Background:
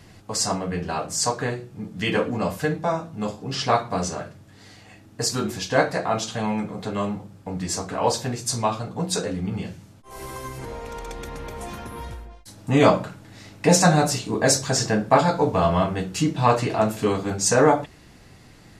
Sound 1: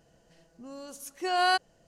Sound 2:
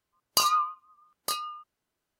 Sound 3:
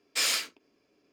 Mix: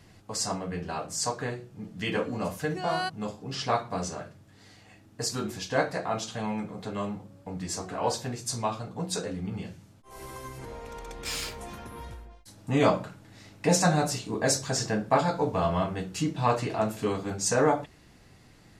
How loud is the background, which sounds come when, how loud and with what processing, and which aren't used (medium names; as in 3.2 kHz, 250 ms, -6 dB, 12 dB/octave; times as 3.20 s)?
background -6.5 dB
1.52 s: add 1 -7 dB
6.58 s: add 1 -14.5 dB + band-pass filter 390 Hz, Q 0.96
11.09 s: add 3 -7.5 dB
not used: 2